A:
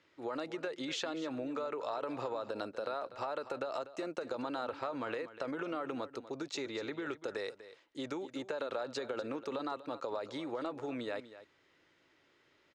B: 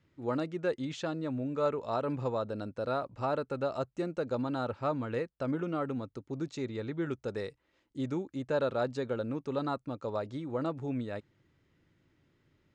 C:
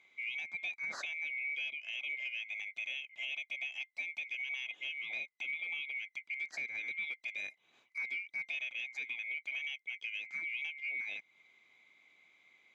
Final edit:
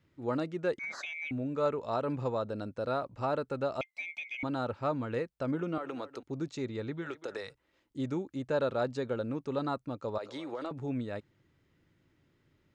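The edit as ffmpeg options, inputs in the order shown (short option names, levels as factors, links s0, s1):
-filter_complex "[2:a]asplit=2[s0][s1];[0:a]asplit=3[s2][s3][s4];[1:a]asplit=6[s5][s6][s7][s8][s9][s10];[s5]atrim=end=0.792[s11];[s0]atrim=start=0.788:end=1.312[s12];[s6]atrim=start=1.308:end=3.812[s13];[s1]atrim=start=3.808:end=4.432[s14];[s7]atrim=start=4.428:end=5.782[s15];[s2]atrim=start=5.778:end=6.232[s16];[s8]atrim=start=6.228:end=7.11[s17];[s3]atrim=start=6.95:end=7.56[s18];[s9]atrim=start=7.4:end=10.182[s19];[s4]atrim=start=10.178:end=10.712[s20];[s10]atrim=start=10.708[s21];[s11][s12]acrossfade=d=0.004:c1=hsin:c2=hsin[s22];[s22][s13]acrossfade=d=0.004:c1=hsin:c2=hsin[s23];[s23][s14]acrossfade=d=0.004:c1=hsin:c2=hsin[s24];[s24][s15]acrossfade=d=0.004:c1=hsin:c2=hsin[s25];[s25][s16]acrossfade=d=0.004:c1=hsin:c2=hsin[s26];[s26][s17]acrossfade=d=0.004:c1=hsin:c2=hsin[s27];[s27][s18]acrossfade=d=0.16:c1=tri:c2=tri[s28];[s28][s19]acrossfade=d=0.16:c1=tri:c2=tri[s29];[s29][s20]acrossfade=d=0.004:c1=hsin:c2=hsin[s30];[s30][s21]acrossfade=d=0.004:c1=hsin:c2=hsin"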